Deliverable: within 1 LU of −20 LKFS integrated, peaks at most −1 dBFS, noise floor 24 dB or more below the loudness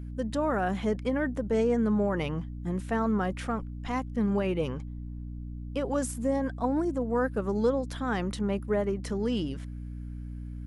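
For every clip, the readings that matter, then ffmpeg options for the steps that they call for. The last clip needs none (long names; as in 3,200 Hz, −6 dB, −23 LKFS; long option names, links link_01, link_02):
mains hum 60 Hz; hum harmonics up to 300 Hz; level of the hum −36 dBFS; integrated loudness −29.5 LKFS; sample peak −15.0 dBFS; target loudness −20.0 LKFS
→ -af "bandreject=frequency=60:width_type=h:width=6,bandreject=frequency=120:width_type=h:width=6,bandreject=frequency=180:width_type=h:width=6,bandreject=frequency=240:width_type=h:width=6,bandreject=frequency=300:width_type=h:width=6"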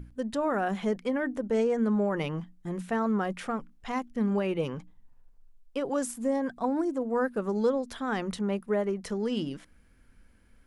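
mains hum none found; integrated loudness −30.0 LKFS; sample peak −16.0 dBFS; target loudness −20.0 LKFS
→ -af "volume=10dB"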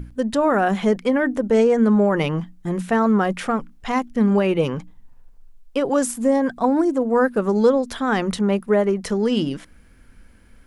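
integrated loudness −20.0 LKFS; sample peak −6.0 dBFS; background noise floor −50 dBFS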